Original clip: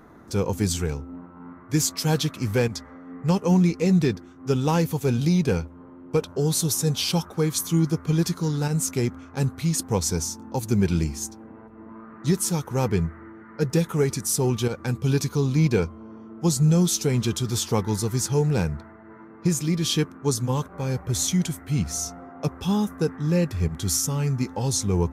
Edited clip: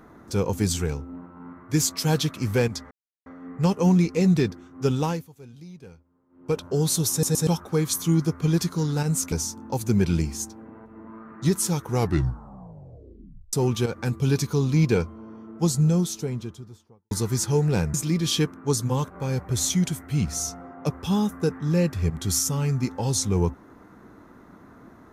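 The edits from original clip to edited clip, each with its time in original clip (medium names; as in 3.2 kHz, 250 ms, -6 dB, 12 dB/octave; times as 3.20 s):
2.91 s: insert silence 0.35 s
4.60–6.26 s: dip -22.5 dB, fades 0.32 s linear
6.76 s: stutter in place 0.12 s, 3 plays
8.97–10.14 s: delete
12.69 s: tape stop 1.66 s
16.24–17.93 s: studio fade out
18.76–19.52 s: delete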